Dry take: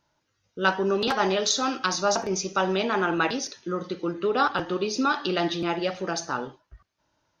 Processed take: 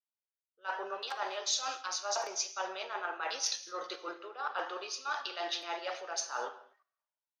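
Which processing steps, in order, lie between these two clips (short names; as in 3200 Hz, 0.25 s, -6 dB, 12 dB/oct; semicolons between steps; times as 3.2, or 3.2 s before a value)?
HPF 570 Hz 24 dB/oct; high shelf 5600 Hz +3 dB; in parallel at +2 dB: level quantiser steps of 24 dB; on the sum: limiter -12 dBFS, peak gain reduction 10 dB; reverse; compressor 6:1, threshold -35 dBFS, peak gain reduction 16.5 dB; reverse; non-linear reverb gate 0.27 s flat, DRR 9 dB; three-band expander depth 100%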